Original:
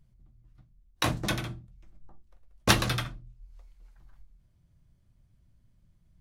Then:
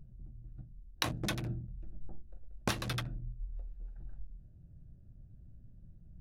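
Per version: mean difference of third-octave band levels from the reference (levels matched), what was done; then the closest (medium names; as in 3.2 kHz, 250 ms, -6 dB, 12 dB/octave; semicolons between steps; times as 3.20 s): 4.5 dB: local Wiener filter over 41 samples; compression 10:1, threshold -41 dBFS, peak gain reduction 24.5 dB; trim +9.5 dB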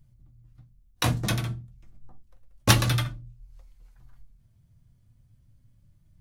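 2.0 dB: peaking EQ 110 Hz +10.5 dB 0.88 oct; flange 0.33 Hz, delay 3.3 ms, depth 1.2 ms, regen +63%; treble shelf 7.1 kHz +6.5 dB; trim +4.5 dB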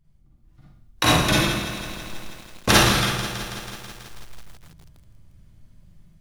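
12.0 dB: level rider gain up to 9.5 dB; Schroeder reverb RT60 0.73 s, DRR -6 dB; bit-crushed delay 163 ms, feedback 80%, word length 6-bit, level -11.5 dB; trim -3 dB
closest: second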